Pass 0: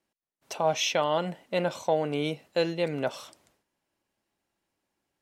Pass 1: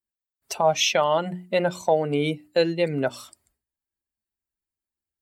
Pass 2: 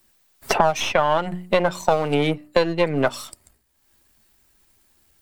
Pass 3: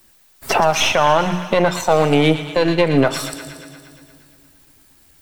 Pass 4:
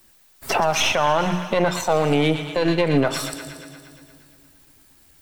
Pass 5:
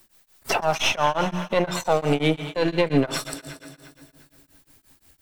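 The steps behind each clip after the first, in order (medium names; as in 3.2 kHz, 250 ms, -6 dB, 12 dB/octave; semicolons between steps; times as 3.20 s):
expander on every frequency bin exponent 1.5; hum notches 60/120/180/240/300/360 Hz; in parallel at +1.5 dB: compression, threshold -36 dBFS, peak gain reduction 14.5 dB; on the sum: trim +4.5 dB
partial rectifier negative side -7 dB; dynamic bell 1.1 kHz, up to +6 dB, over -35 dBFS, Q 0.88; three bands compressed up and down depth 100%; trim +2 dB
feedback echo behind a high-pass 117 ms, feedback 69%, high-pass 1.6 kHz, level -11.5 dB; peak limiter -12.5 dBFS, peak gain reduction 10.5 dB; on a send at -14 dB: reverberation RT60 2.4 s, pre-delay 5 ms; on the sum: trim +8 dB
peak limiter -7.5 dBFS, peak gain reduction 4 dB; trim -2 dB
tremolo of two beating tones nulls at 5.7 Hz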